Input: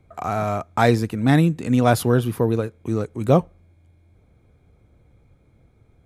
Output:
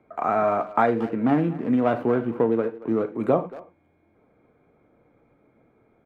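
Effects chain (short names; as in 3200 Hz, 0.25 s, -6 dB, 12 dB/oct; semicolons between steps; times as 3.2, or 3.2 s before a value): 0.86–3.16 median filter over 25 samples; low shelf 210 Hz -4.5 dB; non-linear reverb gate 0.12 s falling, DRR 7 dB; compressor 10:1, threshold -18 dBFS, peak gain reduction 8.5 dB; three-band isolator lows -20 dB, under 170 Hz, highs -23 dB, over 2300 Hz; speakerphone echo 0.23 s, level -17 dB; gain +3.5 dB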